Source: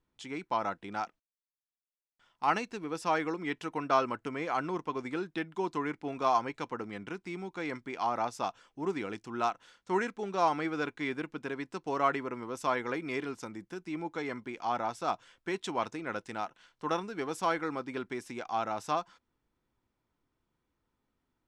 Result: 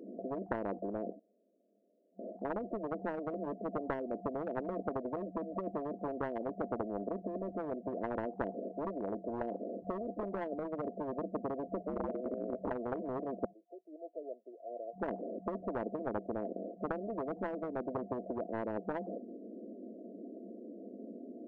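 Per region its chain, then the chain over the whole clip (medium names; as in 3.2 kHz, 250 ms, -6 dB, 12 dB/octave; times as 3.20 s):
11.80–12.71 s: low-pass 1.6 kHz + ring modulator 760 Hz
13.45–14.98 s: ladder high-pass 1.2 kHz, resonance 30% + upward expansion, over -60 dBFS
whole clip: FFT band-pass 190–700 Hz; compression, threshold -38 dBFS; spectrum-flattening compressor 10:1; trim +11.5 dB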